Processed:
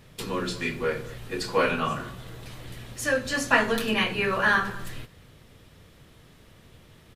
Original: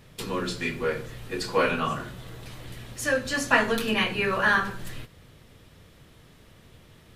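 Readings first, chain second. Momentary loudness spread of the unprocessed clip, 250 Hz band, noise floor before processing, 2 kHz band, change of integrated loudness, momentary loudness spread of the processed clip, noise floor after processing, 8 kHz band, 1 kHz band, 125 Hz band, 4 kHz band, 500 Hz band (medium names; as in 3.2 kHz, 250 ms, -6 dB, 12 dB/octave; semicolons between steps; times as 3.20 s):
20 LU, 0.0 dB, -54 dBFS, 0.0 dB, 0.0 dB, 20 LU, -54 dBFS, 0.0 dB, 0.0 dB, 0.0 dB, 0.0 dB, 0.0 dB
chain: speakerphone echo 220 ms, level -20 dB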